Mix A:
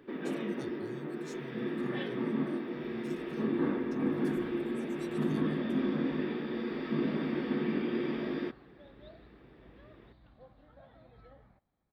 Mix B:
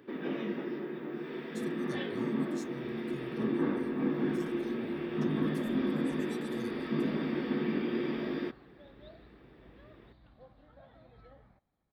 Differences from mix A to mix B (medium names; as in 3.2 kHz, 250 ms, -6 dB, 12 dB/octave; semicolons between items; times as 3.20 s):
speech: entry +1.30 s; master: add treble shelf 6.8 kHz +5 dB